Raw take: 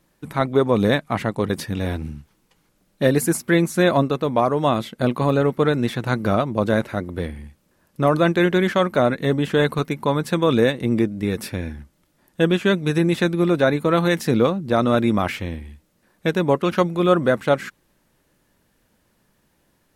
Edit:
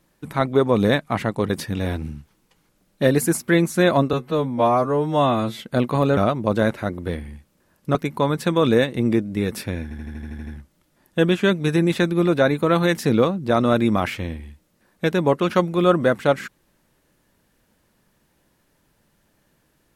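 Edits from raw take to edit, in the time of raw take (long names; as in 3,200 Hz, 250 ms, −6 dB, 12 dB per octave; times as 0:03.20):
0:04.13–0:04.86: time-stretch 2×
0:05.44–0:06.28: remove
0:08.06–0:09.81: remove
0:11.69: stutter 0.08 s, 9 plays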